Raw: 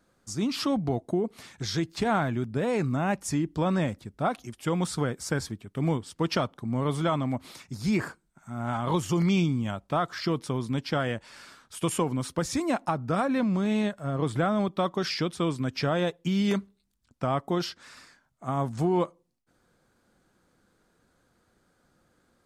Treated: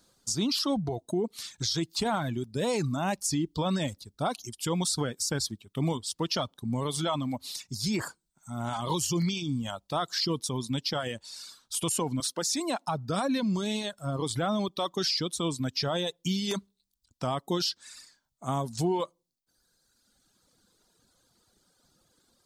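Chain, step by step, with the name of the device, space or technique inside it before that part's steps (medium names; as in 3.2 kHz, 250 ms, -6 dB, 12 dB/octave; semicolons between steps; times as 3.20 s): over-bright horn tweeter (resonant high shelf 2.9 kHz +10 dB, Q 1.5; peak limiter -19 dBFS, peak gain reduction 10.5 dB); peaking EQ 940 Hz +3 dB 0.31 oct; reverb removal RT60 1.7 s; 12.20–12.87 s: high-pass 270 Hz 12 dB/octave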